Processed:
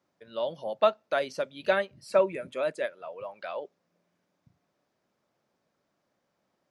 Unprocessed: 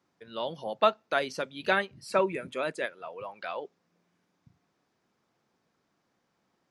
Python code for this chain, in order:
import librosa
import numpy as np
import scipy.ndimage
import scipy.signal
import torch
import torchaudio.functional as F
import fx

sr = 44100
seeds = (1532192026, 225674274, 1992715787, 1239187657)

y = fx.peak_eq(x, sr, hz=590.0, db=9.5, octaves=0.28)
y = F.gain(torch.from_numpy(y), -3.0).numpy()